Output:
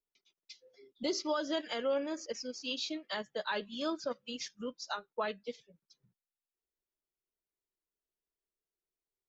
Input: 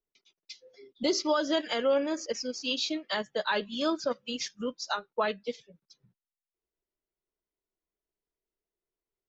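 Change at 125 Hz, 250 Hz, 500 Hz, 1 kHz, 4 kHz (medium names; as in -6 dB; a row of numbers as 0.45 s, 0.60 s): no reading, -6.5 dB, -6.5 dB, -6.5 dB, -6.5 dB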